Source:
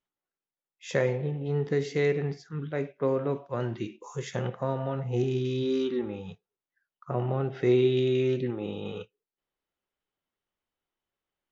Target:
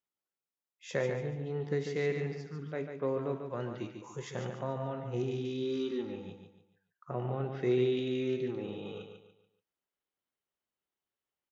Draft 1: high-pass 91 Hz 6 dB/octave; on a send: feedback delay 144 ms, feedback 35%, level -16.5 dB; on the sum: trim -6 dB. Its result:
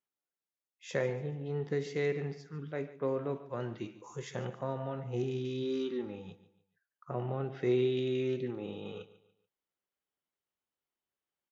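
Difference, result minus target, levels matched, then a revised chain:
echo-to-direct -9.5 dB
high-pass 91 Hz 6 dB/octave; on a send: feedback delay 144 ms, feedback 35%, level -7 dB; on the sum: trim -6 dB

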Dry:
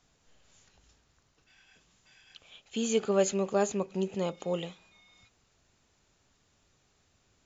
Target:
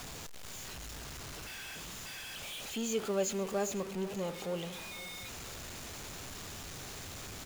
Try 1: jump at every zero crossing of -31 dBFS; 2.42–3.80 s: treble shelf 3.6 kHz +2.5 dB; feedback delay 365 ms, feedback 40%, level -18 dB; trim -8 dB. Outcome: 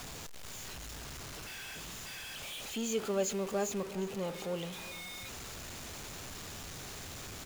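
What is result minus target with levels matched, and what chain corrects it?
echo 135 ms early
jump at every zero crossing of -31 dBFS; 2.42–3.80 s: treble shelf 3.6 kHz +2.5 dB; feedback delay 500 ms, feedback 40%, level -18 dB; trim -8 dB

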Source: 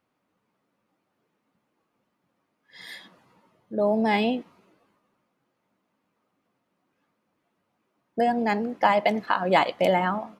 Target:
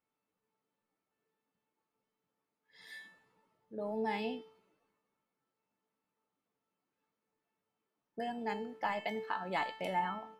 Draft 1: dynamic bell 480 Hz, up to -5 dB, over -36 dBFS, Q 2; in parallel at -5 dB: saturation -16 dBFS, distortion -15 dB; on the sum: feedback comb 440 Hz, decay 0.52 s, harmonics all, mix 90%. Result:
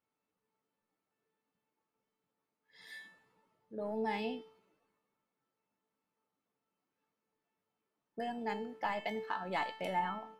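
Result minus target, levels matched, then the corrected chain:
saturation: distortion +12 dB
dynamic bell 480 Hz, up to -5 dB, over -36 dBFS, Q 2; in parallel at -5 dB: saturation -7.5 dBFS, distortion -27 dB; on the sum: feedback comb 440 Hz, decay 0.52 s, harmonics all, mix 90%

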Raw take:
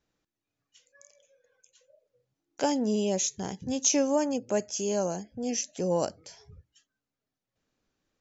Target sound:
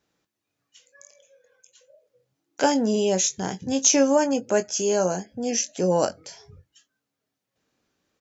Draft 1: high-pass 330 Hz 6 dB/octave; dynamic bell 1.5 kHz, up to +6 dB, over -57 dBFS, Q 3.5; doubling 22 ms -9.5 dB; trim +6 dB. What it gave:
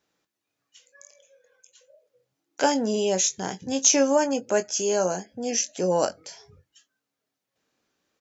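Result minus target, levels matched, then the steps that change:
125 Hz band -3.5 dB
change: high-pass 130 Hz 6 dB/octave

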